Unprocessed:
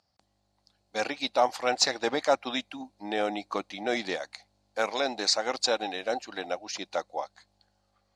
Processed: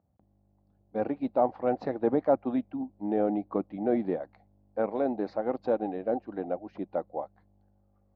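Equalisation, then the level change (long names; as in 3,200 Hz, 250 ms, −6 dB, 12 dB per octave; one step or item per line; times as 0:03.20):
resonant band-pass 290 Hz, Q 0.5
high-frequency loss of the air 210 metres
spectral tilt −4 dB per octave
0.0 dB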